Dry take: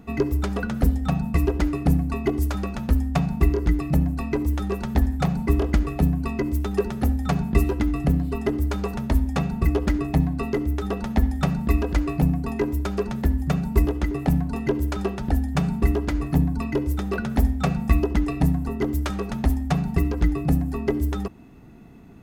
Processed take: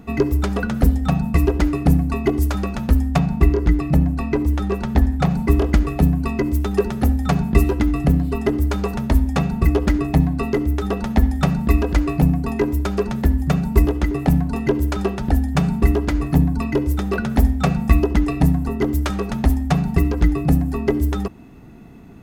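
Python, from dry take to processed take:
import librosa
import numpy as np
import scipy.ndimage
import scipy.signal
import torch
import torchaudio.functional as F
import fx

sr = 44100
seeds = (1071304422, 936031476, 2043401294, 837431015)

y = fx.high_shelf(x, sr, hz=6000.0, db=-6.5, at=(3.18, 5.31))
y = F.gain(torch.from_numpy(y), 4.5).numpy()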